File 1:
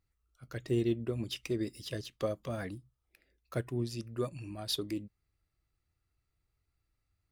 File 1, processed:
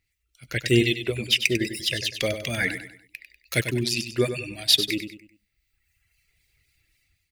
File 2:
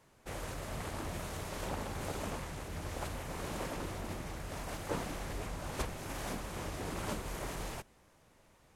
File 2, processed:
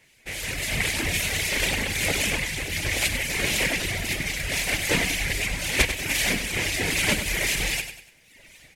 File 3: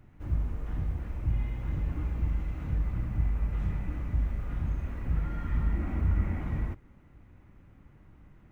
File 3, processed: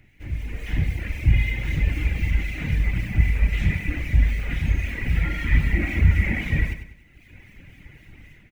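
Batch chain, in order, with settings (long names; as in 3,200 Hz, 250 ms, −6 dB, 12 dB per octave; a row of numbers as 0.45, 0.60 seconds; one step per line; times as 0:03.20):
reverb reduction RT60 1.3 s
high shelf with overshoot 1,600 Hz +10 dB, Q 3
automatic gain control gain up to 12 dB
two-band tremolo in antiphase 3.8 Hz, depth 50%, crossover 2,400 Hz
on a send: repeating echo 97 ms, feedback 38%, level −9.5 dB
on the sum: loudness normalisation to −24 LKFS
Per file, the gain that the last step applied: +1.5, +2.5, +0.5 decibels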